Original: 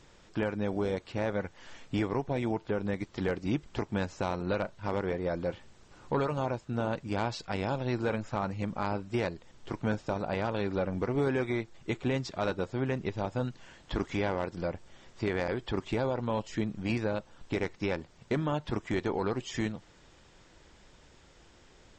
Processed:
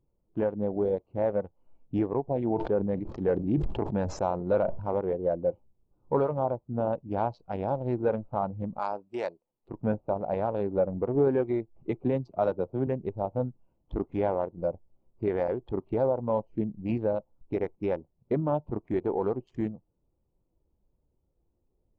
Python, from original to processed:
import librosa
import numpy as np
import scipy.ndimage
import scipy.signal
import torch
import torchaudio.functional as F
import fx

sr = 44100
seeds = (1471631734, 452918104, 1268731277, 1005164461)

y = fx.sustainer(x, sr, db_per_s=25.0, at=(2.39, 4.96))
y = fx.riaa(y, sr, side='recording', at=(8.79, 9.69))
y = fx.band_squash(y, sr, depth_pct=40, at=(11.76, 12.87))
y = fx.wiener(y, sr, points=25)
y = fx.dynamic_eq(y, sr, hz=710.0, q=0.91, threshold_db=-43.0, ratio=4.0, max_db=6)
y = fx.spectral_expand(y, sr, expansion=1.5)